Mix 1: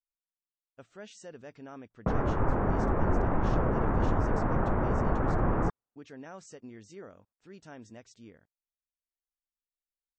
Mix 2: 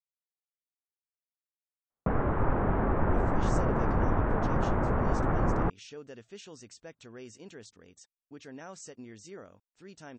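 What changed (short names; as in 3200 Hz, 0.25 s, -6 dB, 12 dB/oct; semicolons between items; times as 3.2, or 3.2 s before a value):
speech: entry +2.35 s; master: add high shelf 3900 Hz +8 dB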